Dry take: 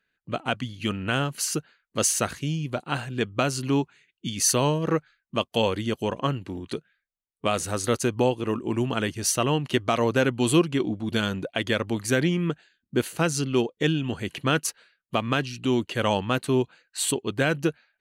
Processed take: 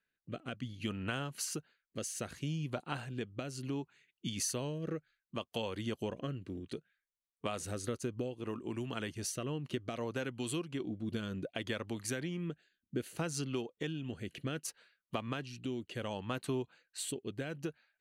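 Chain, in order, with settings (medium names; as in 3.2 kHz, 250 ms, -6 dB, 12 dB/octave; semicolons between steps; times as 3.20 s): compression 4:1, threshold -26 dBFS, peak gain reduction 10 dB; rotary cabinet horn 0.65 Hz; trim -6.5 dB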